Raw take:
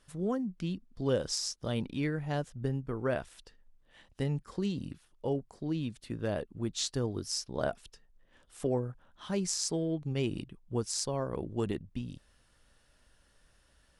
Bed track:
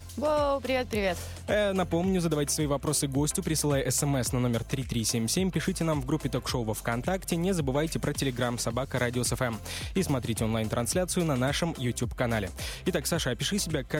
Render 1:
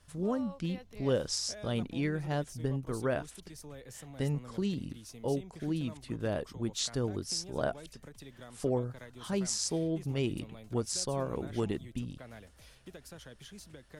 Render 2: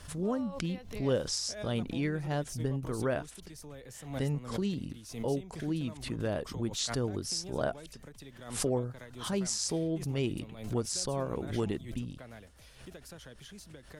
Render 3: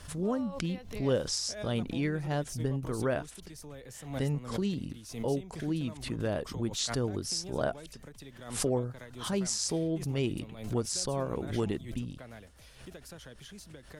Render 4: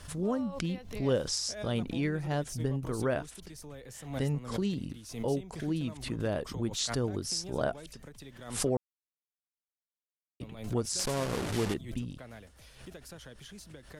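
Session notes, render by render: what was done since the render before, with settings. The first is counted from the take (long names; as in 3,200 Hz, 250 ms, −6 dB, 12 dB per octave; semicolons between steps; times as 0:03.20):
mix in bed track −21.5 dB
background raised ahead of every attack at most 91 dB per second
level +1 dB
0:08.77–0:10.40: silence; 0:10.99–0:11.74: linear delta modulator 64 kbit/s, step −29 dBFS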